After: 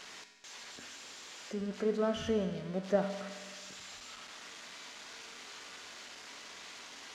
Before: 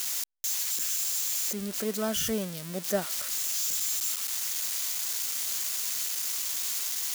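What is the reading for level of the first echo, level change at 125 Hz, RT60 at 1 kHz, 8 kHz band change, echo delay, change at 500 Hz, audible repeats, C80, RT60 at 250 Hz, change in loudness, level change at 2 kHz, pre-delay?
none, -1.0 dB, 1.5 s, -22.0 dB, none, +0.5 dB, none, 10.0 dB, 1.5 s, -11.0 dB, -5.0 dB, 4 ms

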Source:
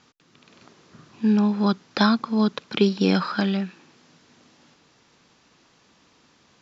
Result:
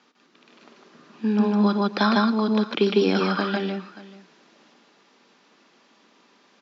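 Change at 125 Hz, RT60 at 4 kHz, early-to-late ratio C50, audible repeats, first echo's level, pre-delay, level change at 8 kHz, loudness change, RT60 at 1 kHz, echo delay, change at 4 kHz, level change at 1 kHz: -2.0 dB, none, none, 4, -13.5 dB, none, n/a, 0.0 dB, none, 58 ms, 0.0 dB, +2.5 dB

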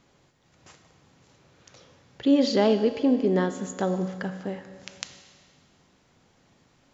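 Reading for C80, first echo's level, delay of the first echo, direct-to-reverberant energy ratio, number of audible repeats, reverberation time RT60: 11.0 dB, none, none, 8.5 dB, none, 1.9 s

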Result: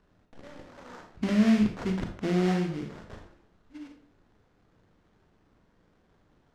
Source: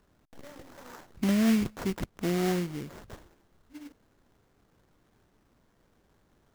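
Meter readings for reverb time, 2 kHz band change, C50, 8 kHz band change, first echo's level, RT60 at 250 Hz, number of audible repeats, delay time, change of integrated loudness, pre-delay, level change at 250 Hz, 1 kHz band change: 0.45 s, +1.0 dB, 6.5 dB, n/a, none, 0.50 s, none, none, +1.5 dB, 30 ms, +2.0 dB, +1.5 dB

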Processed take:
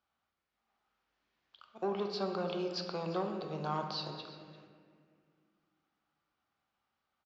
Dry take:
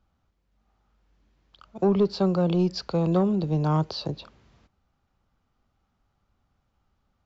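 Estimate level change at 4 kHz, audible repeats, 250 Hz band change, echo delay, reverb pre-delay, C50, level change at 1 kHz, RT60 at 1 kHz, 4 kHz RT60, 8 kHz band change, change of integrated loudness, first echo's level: -5.0 dB, 1, -16.0 dB, 0.346 s, 3 ms, 5.0 dB, -6.0 dB, 1.8 s, 1.4 s, n/a, -12.5 dB, -18.0 dB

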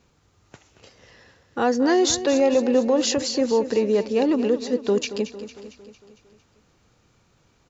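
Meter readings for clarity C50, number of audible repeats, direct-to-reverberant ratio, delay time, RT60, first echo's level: none, 5, none, 0.227 s, none, -13.0 dB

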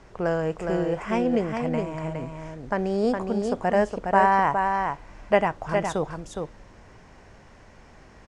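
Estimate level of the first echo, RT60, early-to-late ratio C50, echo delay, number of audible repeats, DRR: -5.0 dB, none, none, 0.413 s, 1, none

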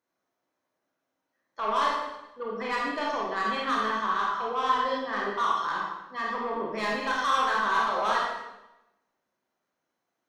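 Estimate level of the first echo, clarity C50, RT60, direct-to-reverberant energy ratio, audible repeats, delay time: none, 0.5 dB, 0.95 s, -3.0 dB, none, none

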